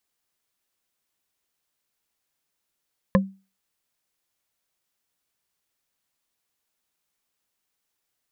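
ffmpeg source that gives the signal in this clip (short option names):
-f lavfi -i "aevalsrc='0.251*pow(10,-3*t/0.31)*sin(2*PI*193*t)+0.2*pow(10,-3*t/0.092)*sin(2*PI*532.1*t)+0.158*pow(10,-3*t/0.041)*sin(2*PI*1043*t)+0.126*pow(10,-3*t/0.022)*sin(2*PI*1724.1*t)':d=0.45:s=44100"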